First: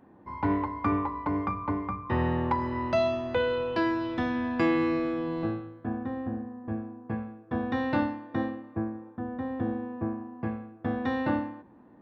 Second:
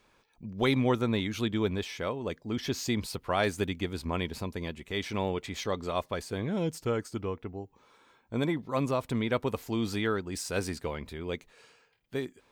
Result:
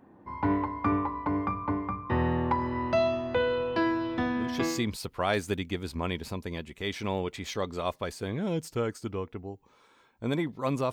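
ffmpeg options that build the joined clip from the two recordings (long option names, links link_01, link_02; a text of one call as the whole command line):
ffmpeg -i cue0.wav -i cue1.wav -filter_complex "[0:a]apad=whole_dur=10.92,atrim=end=10.92,atrim=end=4.88,asetpts=PTS-STARTPTS[link_01];[1:a]atrim=start=2.34:end=9.02,asetpts=PTS-STARTPTS[link_02];[link_01][link_02]acrossfade=duration=0.64:curve1=qsin:curve2=qsin" out.wav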